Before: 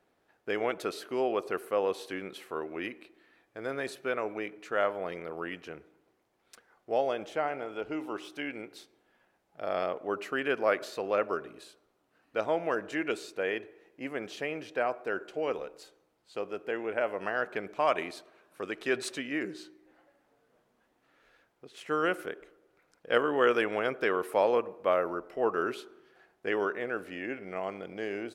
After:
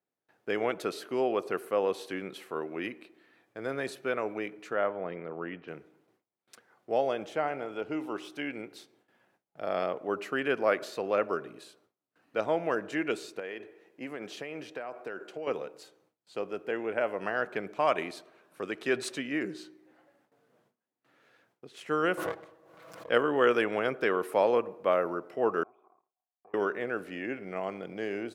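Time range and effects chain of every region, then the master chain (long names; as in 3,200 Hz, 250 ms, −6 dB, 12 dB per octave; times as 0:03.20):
0:04.73–0:05.68: high-pass filter 52 Hz + high-frequency loss of the air 370 metres
0:13.39–0:15.47: high-pass filter 170 Hz 6 dB per octave + downward compressor 10 to 1, threshold −34 dBFS
0:22.17–0:23.09: lower of the sound and its delayed copy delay 6.1 ms + hollow resonant body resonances 620/1,100 Hz, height 14 dB, ringing for 25 ms + background raised ahead of every attack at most 38 dB per second
0:25.63–0:26.54: leveller curve on the samples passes 3 + downward compressor 8 to 1, threshold −37 dBFS + formant resonators in series a
whole clip: noise gate with hold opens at −60 dBFS; high-pass filter 110 Hz 24 dB per octave; low-shelf EQ 180 Hz +6.5 dB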